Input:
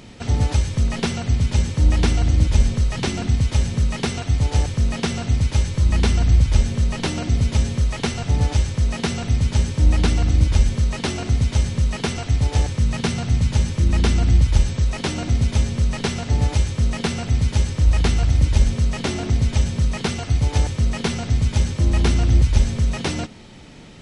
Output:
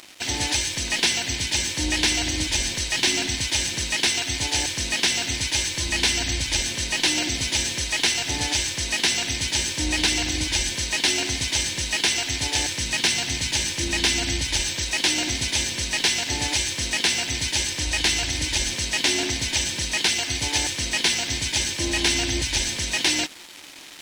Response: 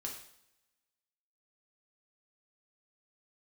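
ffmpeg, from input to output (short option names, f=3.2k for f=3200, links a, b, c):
-filter_complex "[0:a]tiltshelf=f=1.1k:g=-9.5,asplit=2[a][b];[b]alimiter=limit=-15dB:level=0:latency=1:release=108,volume=-1.5dB[c];[a][c]amix=inputs=2:normalize=0,superequalizer=6b=3.55:10b=0.282,aeval=exprs='sgn(val(0))*max(abs(val(0))-0.0158,0)':c=same,areverse,acompressor=mode=upward:threshold=-32dB:ratio=2.5,areverse,asplit=2[d][e];[e]highpass=f=720:p=1,volume=10dB,asoftclip=type=tanh:threshold=-3dB[f];[d][f]amix=inputs=2:normalize=0,lowpass=f=7.8k:p=1,volume=-6dB,volume=-5dB"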